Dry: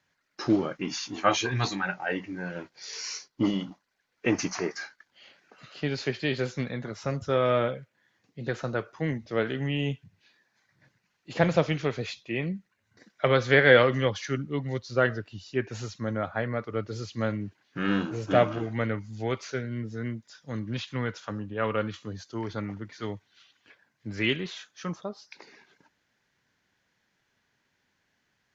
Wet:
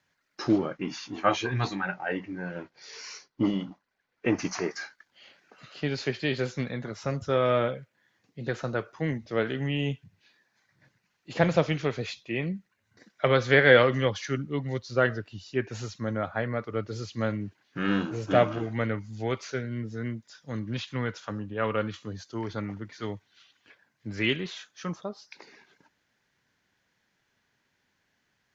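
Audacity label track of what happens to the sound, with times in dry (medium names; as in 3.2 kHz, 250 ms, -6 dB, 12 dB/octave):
0.580000	4.450000	low-pass 2.5 kHz 6 dB/octave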